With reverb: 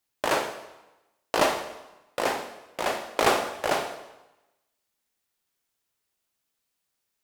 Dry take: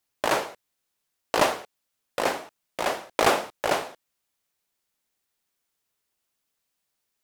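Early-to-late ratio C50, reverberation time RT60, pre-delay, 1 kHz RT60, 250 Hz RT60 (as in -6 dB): 9.0 dB, 1.0 s, 7 ms, 1.1 s, 1.0 s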